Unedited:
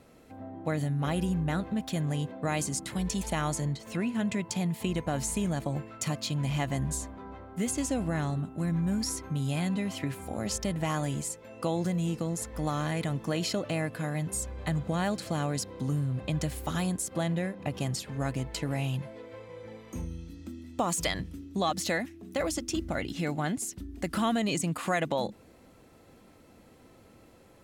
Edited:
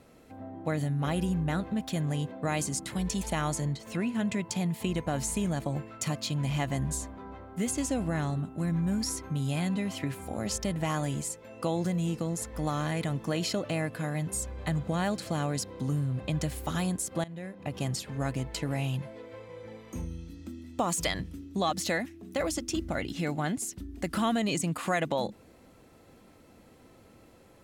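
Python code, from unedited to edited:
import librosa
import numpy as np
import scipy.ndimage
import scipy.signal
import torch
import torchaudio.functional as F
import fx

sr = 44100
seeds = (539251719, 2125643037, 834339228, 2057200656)

y = fx.edit(x, sr, fx.fade_in_from(start_s=17.24, length_s=0.61, floor_db=-19.0), tone=tone)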